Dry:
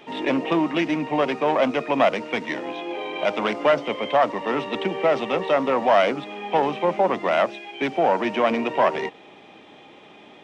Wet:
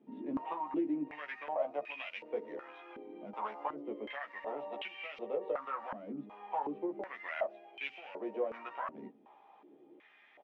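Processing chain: compression, threshold -21 dBFS, peak gain reduction 8.5 dB; doubling 14 ms -3 dB; step-sequenced band-pass 2.7 Hz 240–2600 Hz; trim -6 dB

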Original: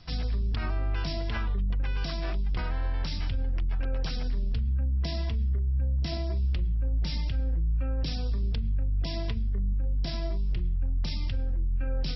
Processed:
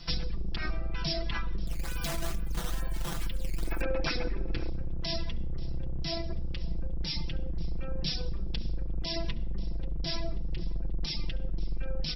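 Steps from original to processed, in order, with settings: octave divider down 2 oct, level +1 dB; reverb removal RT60 0.96 s; feedback delay 536 ms, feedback 52%, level -18.5 dB; compression 4:1, threshold -30 dBFS, peak gain reduction 9 dB; reverberation RT60 0.70 s, pre-delay 69 ms, DRR 17 dB; 3.60–4.70 s: time-frequency box 220–2700 Hz +10 dB; 1.67–3.81 s: decimation with a swept rate 11×, swing 160% 2.3 Hz; treble shelf 2.5 kHz +9.5 dB; comb 5.9 ms, depth 73%

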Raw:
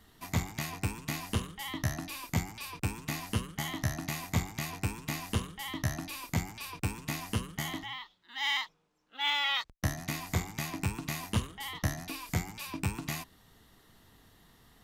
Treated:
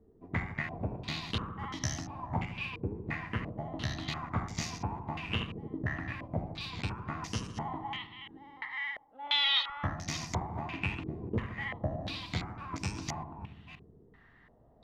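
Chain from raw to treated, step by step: chunks repeated in reverse 299 ms, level -9 dB; filtered feedback delay 75 ms, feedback 79%, low-pass 1.2 kHz, level -9.5 dB; step-sequenced low-pass 2.9 Hz 430–5700 Hz; trim -4 dB

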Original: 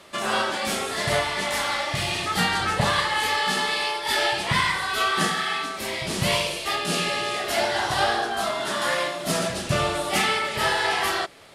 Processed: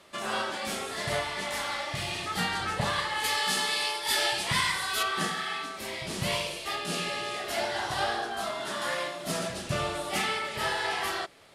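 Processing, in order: 3.24–5.03 s: treble shelf 4 kHz +10.5 dB; trim -7 dB

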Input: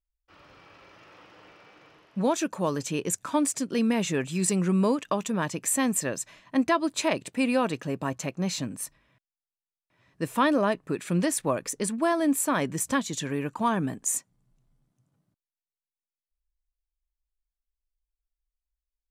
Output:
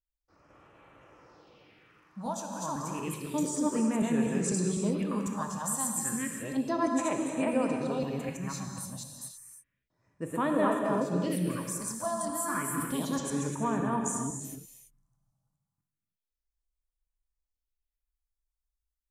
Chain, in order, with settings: chunks repeated in reverse 251 ms, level -0.5 dB; phase shifter stages 4, 0.31 Hz, lowest notch 370–4900 Hz; gated-style reverb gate 360 ms flat, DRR 2 dB; trim -7.5 dB

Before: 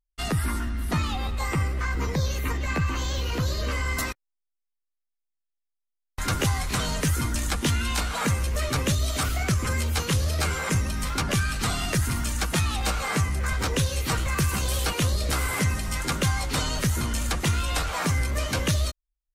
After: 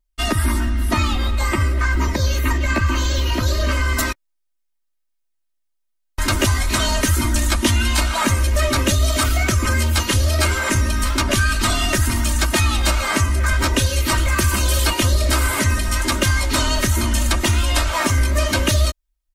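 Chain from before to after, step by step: comb 3.2 ms, depth 99%; trim +5 dB

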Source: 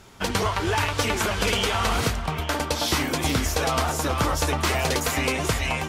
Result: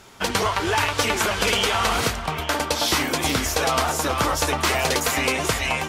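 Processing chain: bass shelf 230 Hz -8 dB; trim +3.5 dB

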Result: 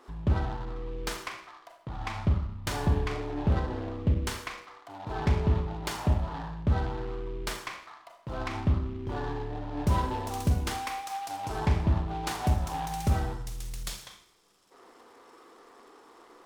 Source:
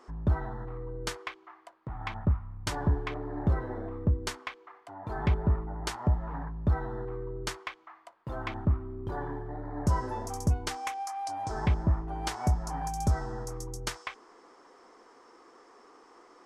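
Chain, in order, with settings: time-frequency box 13.33–14.71 s, 210–3100 Hz -16 dB; Schroeder reverb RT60 0.6 s, combs from 27 ms, DRR 2.5 dB; delay time shaken by noise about 2.2 kHz, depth 0.031 ms

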